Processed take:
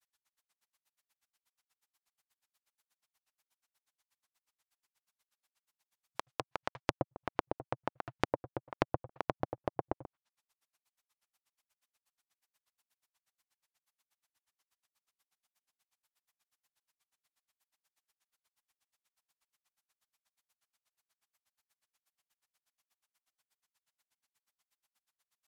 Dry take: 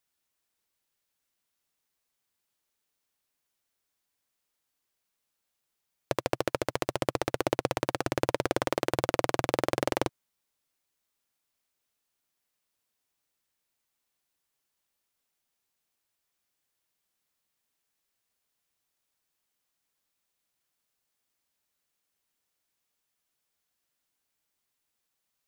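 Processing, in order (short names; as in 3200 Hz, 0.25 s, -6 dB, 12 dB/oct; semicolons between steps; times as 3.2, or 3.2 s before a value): grains 61 ms, grains 8.3/s, spray 15 ms, pitch spread up and down by 0 st; treble ducked by the level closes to 530 Hz, closed at -37.5 dBFS; resonant low shelf 620 Hz -7.5 dB, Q 1.5; gain +6.5 dB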